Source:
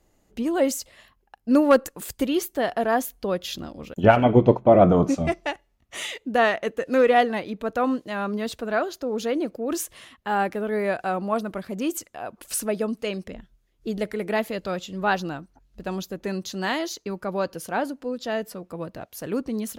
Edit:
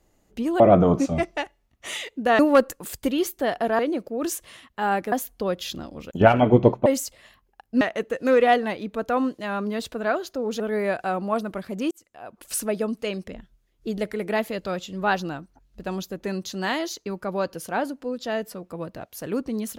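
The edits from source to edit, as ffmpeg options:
-filter_complex "[0:a]asplit=9[s0][s1][s2][s3][s4][s5][s6][s7][s8];[s0]atrim=end=0.602[s9];[s1]atrim=start=4.688:end=6.482[s10];[s2]atrim=start=1.548:end=2.952[s11];[s3]atrim=start=9.268:end=10.602[s12];[s4]atrim=start=2.948:end=4.692[s13];[s5]atrim=start=0.598:end=1.552[s14];[s6]atrim=start=6.478:end=9.272[s15];[s7]atrim=start=10.598:end=11.91,asetpts=PTS-STARTPTS,afade=t=out:st=1.308:d=0.004:c=hsin[s16];[s8]atrim=start=11.91,asetpts=PTS-STARTPTS,afade=t=in:d=0.67[s17];[s9][s10]acrossfade=d=0.004:c1=hsin:c2=hsin[s18];[s18][s11]acrossfade=d=0.004:c1=hsin:c2=hsin[s19];[s19][s12]acrossfade=d=0.004:c1=hsin:c2=hsin[s20];[s20][s13]acrossfade=d=0.004:c1=hsin:c2=hsin[s21];[s21][s14]acrossfade=d=0.004:c1=hsin:c2=hsin[s22];[s22][s15]acrossfade=d=0.004:c1=hsin:c2=hsin[s23];[s16][s17]concat=n=2:v=0:a=1[s24];[s23][s24]acrossfade=d=0.004:c1=hsin:c2=hsin"

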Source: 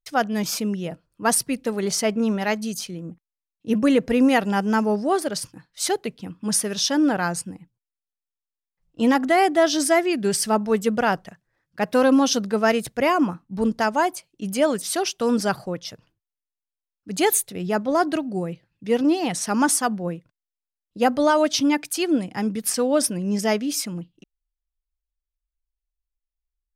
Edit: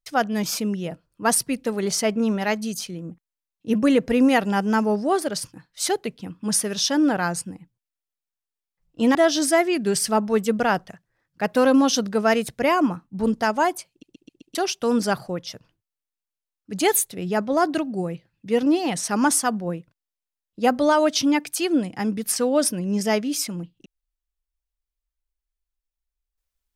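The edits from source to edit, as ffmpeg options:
-filter_complex "[0:a]asplit=7[s0][s1][s2][s3][s4][s5][s6];[s0]atrim=end=9.152[s7];[s1]atrim=start=9.528:end=14.412[s8];[s2]atrim=start=14.278:end=14.412[s9];[s3]atrim=start=14.278:end=14.412[s10];[s4]atrim=start=14.278:end=14.412[s11];[s5]atrim=start=14.278:end=14.412[s12];[s6]atrim=start=14.928[s13];[s7][s8]acrossfade=d=0.004:c1=hsin:c2=hsin[s14];[s14][s9]acrossfade=d=0.004:c1=hsin:c2=hsin[s15];[s15][s10]acrossfade=d=0.004:c1=hsin:c2=hsin[s16];[s16][s11]acrossfade=d=0.004:c1=hsin:c2=hsin[s17];[s17][s12]acrossfade=d=0.004:c1=hsin:c2=hsin[s18];[s18][s13]acrossfade=d=0.004:c1=hsin:c2=hsin"

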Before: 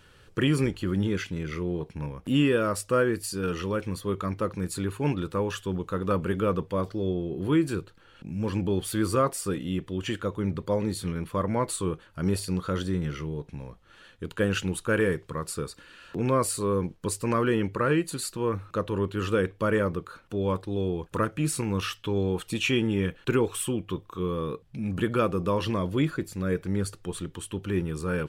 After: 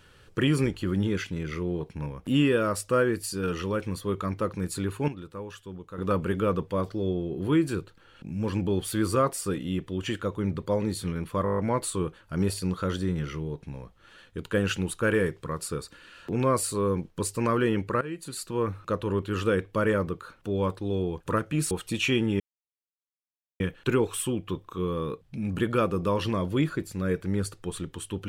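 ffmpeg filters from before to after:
-filter_complex "[0:a]asplit=13[s0][s1][s2][s3][s4][s5][s6][s7][s8][s9][s10][s11][s12];[s0]atrim=end=5.082[s13];[s1]atrim=start=5.078:end=5.982,asetpts=PTS-STARTPTS,volume=0.299[s14];[s2]atrim=start=5.978:end=11.462[s15];[s3]atrim=start=11.438:end=11.462[s16];[s4]atrim=start=11.438:end=11.462[s17];[s5]atrim=start=11.438:end=11.462[s18];[s6]atrim=start=11.438:end=11.462[s19];[s7]atrim=start=11.438:end=11.462[s20];[s8]atrim=start=11.438:end=11.462[s21];[s9]atrim=start=11.438:end=17.87,asetpts=PTS-STARTPTS,afade=t=out:st=6.428:d=0.004:c=hsin:silence=0.133352[s22];[s10]atrim=start=17.87:end=21.572,asetpts=PTS-STARTPTS,afade=t=in:d=0.58:silence=0.133352[s23];[s11]atrim=start=22.318:end=23.01,asetpts=PTS-STARTPTS,afade=t=out:st=0.688:d=0.004:c=hsin,apad=pad_dur=1.2[s24];[s12]atrim=start=23.01,asetpts=PTS-STARTPTS,afade=t=in:d=0.004:c=hsin[s25];[s13][s14]acrossfade=d=0.004:c1=hsin:c2=hsin[s26];[s26][s15]acrossfade=d=0.004:c1=hsin:c2=hsin[s27];[s27][s16]acrossfade=d=0.004:c1=hsin:c2=hsin[s28];[s28][s17]acrossfade=d=0.004:c1=hsin:c2=hsin[s29];[s29][s18]acrossfade=d=0.004:c1=hsin:c2=hsin[s30];[s30][s19]acrossfade=d=0.004:c1=hsin:c2=hsin[s31];[s31][s20]acrossfade=d=0.004:c1=hsin:c2=hsin[s32];[s32][s21]acrossfade=d=0.004:c1=hsin:c2=hsin[s33];[s22][s23]concat=n=2:v=0:a=1[s34];[s33][s34]acrossfade=d=0.004:c1=hsin:c2=hsin[s35];[s24][s25]concat=n=2:v=0:a=1[s36];[s35][s36]acrossfade=d=0.004:c1=hsin:c2=hsin"

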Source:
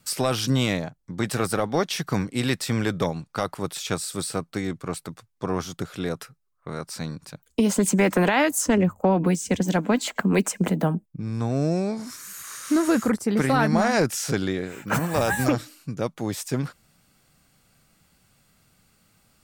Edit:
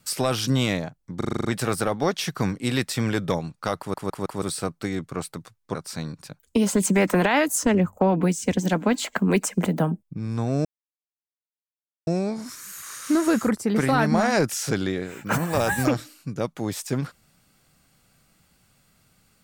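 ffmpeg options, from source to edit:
-filter_complex "[0:a]asplit=14[s0][s1][s2][s3][s4][s5][s6][s7][s8][s9][s10][s11][s12][s13];[s0]atrim=end=1.212[s14];[s1]atrim=start=1.168:end=1.212[s15];[s2]atrim=start=1.168:end=1.212[s16];[s3]atrim=start=1.168:end=1.212[s17];[s4]atrim=start=1.168:end=1.212[s18];[s5]atrim=start=1.168:end=1.212[s19];[s6]atrim=start=1.168:end=1.212[s20];[s7]atrim=start=1.168:end=3.662[s21];[s8]atrim=start=3.498:end=3.662[s22];[s9]atrim=start=3.498:end=3.662[s23];[s10]atrim=start=3.498:end=3.662[s24];[s11]atrim=start=4.138:end=5.472[s25];[s12]atrim=start=6.778:end=11.68,asetpts=PTS-STARTPTS,afade=t=out:st=4.898:d=0.004:c=hsin,apad=pad_dur=1.42[s26];[s13]atrim=start=11.68,asetpts=PTS-STARTPTS,afade=t=in:d=0.004:c=hsin[s27];[s14][s15]acrossfade=d=0.004:c1=hsin:c2=hsin[s28];[s28][s16]acrossfade=d=0.004:c1=hsin:c2=hsin[s29];[s29][s17]acrossfade=d=0.004:c1=hsin:c2=hsin[s30];[s30][s18]acrossfade=d=0.004:c1=hsin:c2=hsin[s31];[s31][s19]acrossfade=d=0.004:c1=hsin:c2=hsin[s32];[s32][s20]acrossfade=d=0.004:c1=hsin:c2=hsin[s33];[s33][s21]acrossfade=d=0.004:c1=hsin:c2=hsin[s34];[s34][s22]acrossfade=d=0.004:c1=hsin:c2=hsin[s35];[s35][s23]acrossfade=d=0.004:c1=hsin:c2=hsin[s36];[s36][s24]acrossfade=d=0.004:c1=hsin:c2=hsin[s37];[s37][s25]acrossfade=d=0.004:c1=hsin:c2=hsin[s38];[s26][s27]concat=n=2:v=0:a=1[s39];[s38][s39]acrossfade=d=0.004:c1=hsin:c2=hsin"

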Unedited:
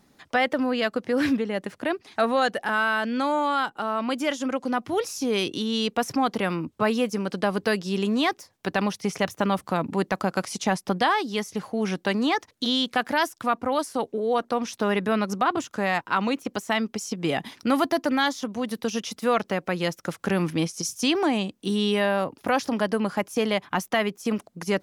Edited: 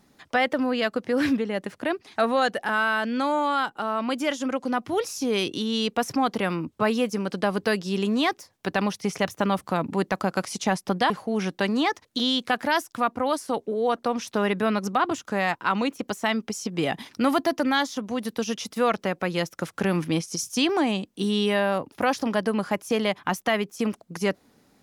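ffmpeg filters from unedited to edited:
-filter_complex "[0:a]asplit=2[s0][s1];[s0]atrim=end=11.102[s2];[s1]atrim=start=11.558[s3];[s2][s3]acrossfade=d=0.004:c1=hsin:c2=hsin"

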